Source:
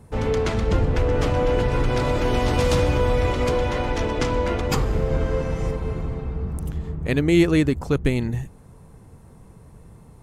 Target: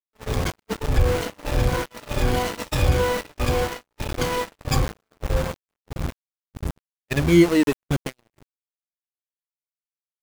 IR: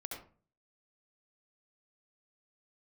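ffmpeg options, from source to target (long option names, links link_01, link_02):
-af "afftfilt=real='re*pow(10,23/40*sin(2*PI*(1.9*log(max(b,1)*sr/1024/100)/log(2)-(-1.6)*(pts-256)/sr)))':imag='im*pow(10,23/40*sin(2*PI*(1.9*log(max(b,1)*sr/1024/100)/log(2)-(-1.6)*(pts-256)/sr)))':win_size=1024:overlap=0.75,aeval=exprs='val(0)*gte(abs(val(0)),0.15)':channel_layout=same,agate=range=-46dB:threshold=-18dB:ratio=16:detection=peak,volume=-6.5dB"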